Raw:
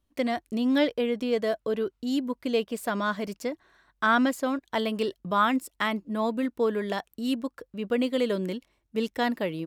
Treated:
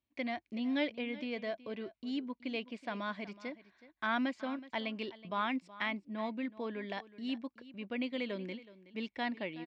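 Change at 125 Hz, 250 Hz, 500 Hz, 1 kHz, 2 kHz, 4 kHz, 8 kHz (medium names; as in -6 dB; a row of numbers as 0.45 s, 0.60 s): -11.5 dB, -10.0 dB, -13.5 dB, -11.0 dB, -8.0 dB, -8.0 dB, under -20 dB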